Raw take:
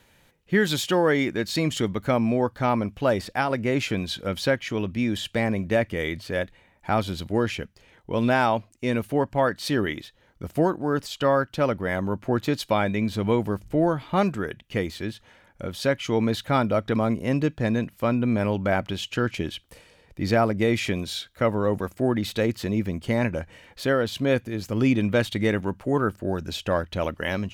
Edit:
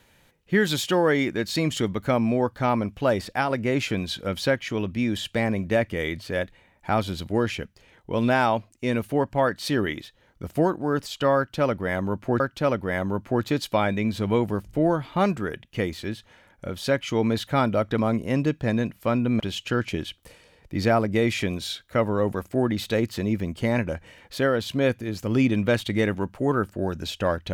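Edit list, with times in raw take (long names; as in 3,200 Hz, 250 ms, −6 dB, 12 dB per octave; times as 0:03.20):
0:11.37–0:12.40: repeat, 2 plays
0:18.37–0:18.86: remove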